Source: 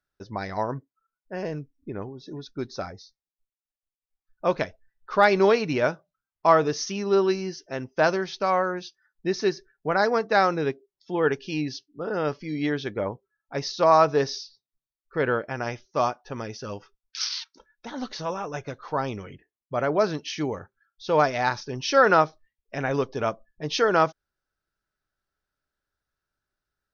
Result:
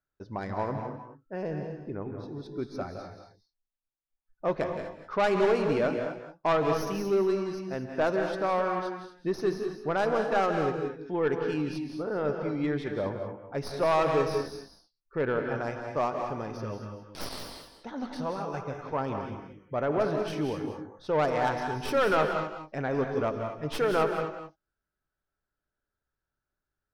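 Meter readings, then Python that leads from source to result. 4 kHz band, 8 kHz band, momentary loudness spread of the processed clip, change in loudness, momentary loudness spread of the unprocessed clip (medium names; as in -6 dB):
-8.5 dB, no reading, 13 LU, -4.5 dB, 17 LU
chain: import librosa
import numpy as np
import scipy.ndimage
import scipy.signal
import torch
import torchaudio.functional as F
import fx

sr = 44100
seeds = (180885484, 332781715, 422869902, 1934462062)

y = fx.tracing_dist(x, sr, depth_ms=0.12)
y = fx.high_shelf(y, sr, hz=2400.0, db=-11.5)
y = 10.0 ** (-16.5 / 20.0) * np.tanh(y / 10.0 ** (-16.5 / 20.0))
y = fx.echo_multitap(y, sr, ms=(165, 184), db=(-11.5, -10.0))
y = fx.rev_gated(y, sr, seeds[0], gate_ms=270, shape='rising', drr_db=6.5)
y = y * librosa.db_to_amplitude(-2.0)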